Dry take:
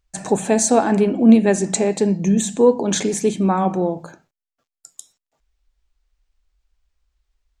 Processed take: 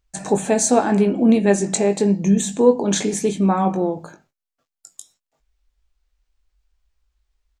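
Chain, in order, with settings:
double-tracking delay 20 ms −8 dB
level −1 dB

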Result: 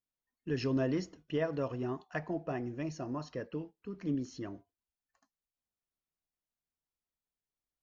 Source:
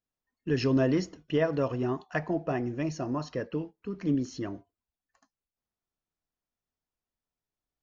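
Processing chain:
level −6.5 dB

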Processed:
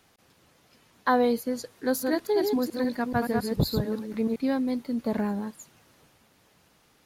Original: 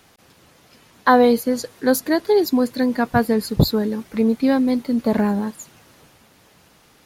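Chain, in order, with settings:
0:01.70–0:04.36: delay that plays each chunk backwards 143 ms, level −4 dB
level −9 dB

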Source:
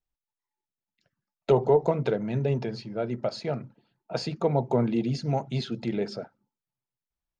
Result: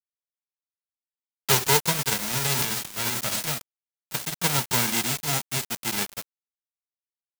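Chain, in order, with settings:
spectral envelope flattened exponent 0.1
0:02.53–0:03.47: transient designer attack −3 dB, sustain +12 dB
bit reduction 5 bits

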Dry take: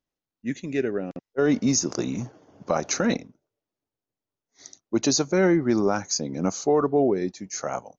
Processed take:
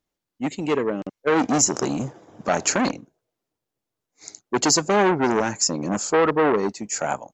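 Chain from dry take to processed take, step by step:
wrong playback speed 44.1 kHz file played as 48 kHz
saturating transformer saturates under 1,300 Hz
level +5.5 dB

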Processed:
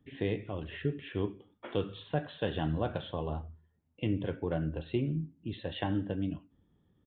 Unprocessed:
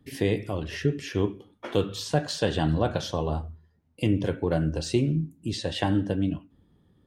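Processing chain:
downsampling to 8,000 Hz
level −7.5 dB

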